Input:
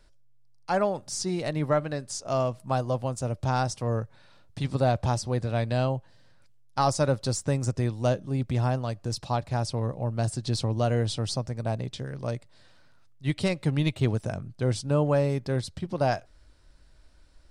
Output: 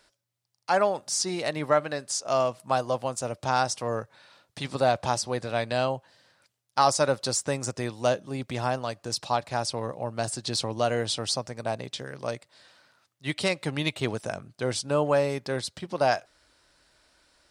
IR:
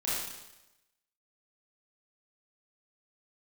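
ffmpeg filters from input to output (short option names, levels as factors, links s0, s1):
-af "highpass=f=650:p=1,volume=1.88"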